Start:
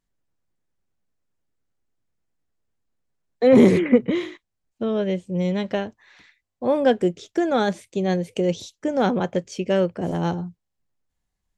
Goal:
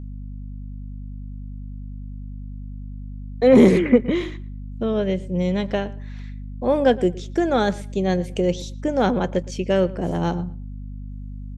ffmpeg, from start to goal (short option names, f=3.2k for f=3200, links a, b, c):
-filter_complex "[0:a]asplit=2[a][b];[b]adelay=115,lowpass=f=2.9k:p=1,volume=-19.5dB,asplit=2[c][d];[d]adelay=115,lowpass=f=2.9k:p=1,volume=0.21[e];[a][c][e]amix=inputs=3:normalize=0,aeval=exprs='val(0)+0.0224*(sin(2*PI*50*n/s)+sin(2*PI*2*50*n/s)/2+sin(2*PI*3*50*n/s)/3+sin(2*PI*4*50*n/s)/4+sin(2*PI*5*50*n/s)/5)':c=same,volume=1dB"